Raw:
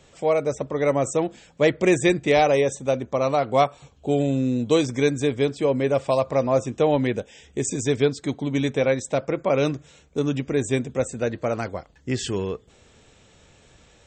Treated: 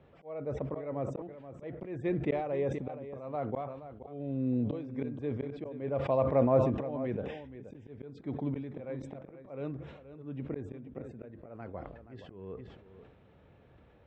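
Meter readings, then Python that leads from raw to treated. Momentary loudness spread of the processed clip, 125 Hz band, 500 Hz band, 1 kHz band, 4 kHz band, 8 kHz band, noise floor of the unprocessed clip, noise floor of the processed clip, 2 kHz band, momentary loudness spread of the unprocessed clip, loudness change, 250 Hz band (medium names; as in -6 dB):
18 LU, -9.5 dB, -13.0 dB, -14.0 dB, under -25 dB, under -35 dB, -55 dBFS, -60 dBFS, -21.0 dB, 9 LU, -12.0 dB, -11.0 dB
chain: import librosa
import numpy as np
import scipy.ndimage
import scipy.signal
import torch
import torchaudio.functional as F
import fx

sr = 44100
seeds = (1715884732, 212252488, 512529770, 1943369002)

p1 = scipy.signal.sosfilt(scipy.signal.butter(2, 54.0, 'highpass', fs=sr, output='sos'), x)
p2 = fx.high_shelf(p1, sr, hz=2400.0, db=-11.5)
p3 = fx.auto_swell(p2, sr, attack_ms=640.0)
p4 = fx.air_absorb(p3, sr, metres=380.0)
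p5 = p4 + fx.echo_single(p4, sr, ms=476, db=-13.0, dry=0)
p6 = fx.sustainer(p5, sr, db_per_s=54.0)
y = p6 * librosa.db_to_amplitude(-3.5)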